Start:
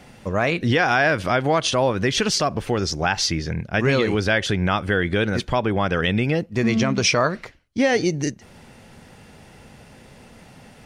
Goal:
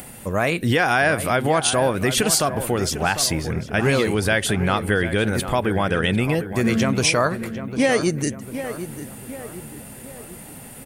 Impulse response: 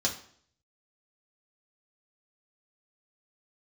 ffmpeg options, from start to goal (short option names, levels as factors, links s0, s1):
-filter_complex "[0:a]aexciter=amount=9.1:drive=6:freq=8100,acompressor=mode=upward:threshold=0.02:ratio=2.5,asplit=2[s0][s1];[s1]adelay=749,lowpass=f=2000:p=1,volume=0.299,asplit=2[s2][s3];[s3]adelay=749,lowpass=f=2000:p=1,volume=0.51,asplit=2[s4][s5];[s5]adelay=749,lowpass=f=2000:p=1,volume=0.51,asplit=2[s6][s7];[s7]adelay=749,lowpass=f=2000:p=1,volume=0.51,asplit=2[s8][s9];[s9]adelay=749,lowpass=f=2000:p=1,volume=0.51,asplit=2[s10][s11];[s11]adelay=749,lowpass=f=2000:p=1,volume=0.51[s12];[s0][s2][s4][s6][s8][s10][s12]amix=inputs=7:normalize=0"